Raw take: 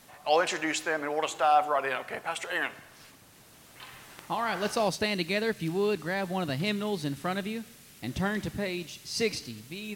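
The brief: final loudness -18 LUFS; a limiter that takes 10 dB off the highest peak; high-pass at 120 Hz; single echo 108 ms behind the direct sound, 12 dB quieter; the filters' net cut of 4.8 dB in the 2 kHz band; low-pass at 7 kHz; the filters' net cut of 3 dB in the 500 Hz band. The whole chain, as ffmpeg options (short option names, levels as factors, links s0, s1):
-af "highpass=120,lowpass=7000,equalizer=f=500:t=o:g=-3.5,equalizer=f=2000:t=o:g=-6,alimiter=level_in=1.06:limit=0.0631:level=0:latency=1,volume=0.944,aecho=1:1:108:0.251,volume=7.08"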